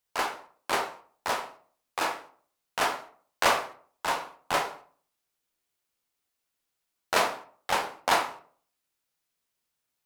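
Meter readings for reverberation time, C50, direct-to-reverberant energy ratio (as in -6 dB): 0.45 s, 11.0 dB, 4.0 dB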